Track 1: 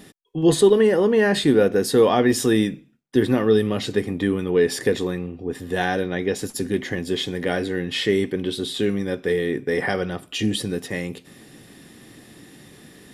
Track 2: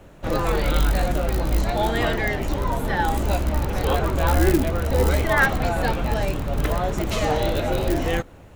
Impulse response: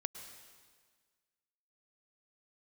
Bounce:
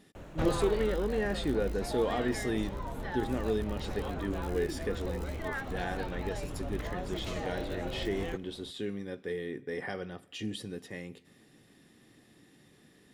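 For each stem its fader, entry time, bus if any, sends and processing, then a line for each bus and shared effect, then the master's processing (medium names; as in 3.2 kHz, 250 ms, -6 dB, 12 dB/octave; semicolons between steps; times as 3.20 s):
-15.0 dB, 0.00 s, send -17 dB, none
+2.5 dB, 0.15 s, no send, compression 6:1, threshold -24 dBFS, peak gain reduction 11.5 dB; auto duck -12 dB, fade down 1.00 s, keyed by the first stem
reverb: on, RT60 1.6 s, pre-delay 98 ms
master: treble shelf 11 kHz -7.5 dB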